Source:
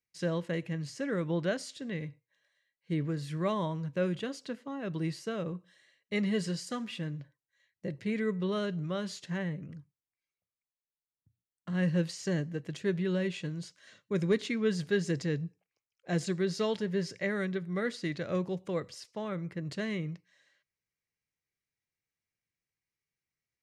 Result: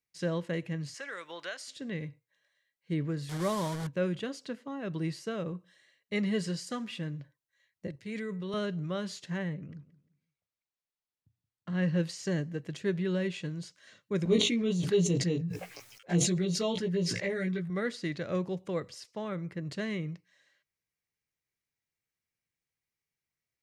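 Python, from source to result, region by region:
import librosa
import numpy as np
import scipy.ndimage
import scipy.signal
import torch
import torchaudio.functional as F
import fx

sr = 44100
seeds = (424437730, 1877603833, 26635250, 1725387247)

y = fx.chain(x, sr, fx.highpass(hz=1000.0, slope=12),
    fx.band_squash(depth_pct=70), at=(0.94, 1.68))
y = fx.chain(y, sr, fx.delta_mod(bps=64000, step_db=-33.0),
    fx.peak_eq(hz=2600.0, db=-8.0, octaves=0.28), at=(3.29, 3.87))
y = fx.chain(y, sr, fx.high_shelf(hz=3500.0, db=8.5),
    fx.level_steps(step_db=9),
    fx.band_widen(depth_pct=70), at=(7.87, 8.54))
y = fx.chain(y, sr, fx.lowpass(hz=5900.0, slope=12),
    fx.echo_feedback(ms=175, feedback_pct=29, wet_db=-18.0), at=(9.54, 12.0))
y = fx.chain(y, sr, fx.env_flanger(rest_ms=10.1, full_db=-27.5),
    fx.doubler(ms=17.0, db=-2.5),
    fx.sustainer(db_per_s=47.0), at=(14.25, 17.7))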